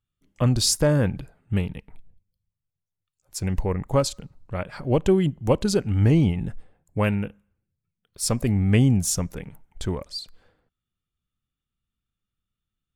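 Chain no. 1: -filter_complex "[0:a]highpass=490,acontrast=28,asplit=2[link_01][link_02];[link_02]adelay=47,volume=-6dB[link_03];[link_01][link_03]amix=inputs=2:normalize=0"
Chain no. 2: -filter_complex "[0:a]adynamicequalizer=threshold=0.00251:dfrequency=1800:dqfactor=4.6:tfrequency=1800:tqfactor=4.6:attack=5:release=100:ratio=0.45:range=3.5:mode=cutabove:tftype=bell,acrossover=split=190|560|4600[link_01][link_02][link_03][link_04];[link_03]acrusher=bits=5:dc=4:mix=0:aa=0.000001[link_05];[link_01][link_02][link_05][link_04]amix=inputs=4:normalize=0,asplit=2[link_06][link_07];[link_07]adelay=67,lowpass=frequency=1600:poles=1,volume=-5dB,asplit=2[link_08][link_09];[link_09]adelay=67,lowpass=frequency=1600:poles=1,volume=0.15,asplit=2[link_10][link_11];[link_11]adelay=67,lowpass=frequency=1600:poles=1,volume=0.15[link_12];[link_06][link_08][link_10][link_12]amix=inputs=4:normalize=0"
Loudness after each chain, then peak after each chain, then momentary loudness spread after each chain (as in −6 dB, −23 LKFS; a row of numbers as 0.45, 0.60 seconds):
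−23.0, −22.5 LKFS; −4.0, −6.0 dBFS; 17, 17 LU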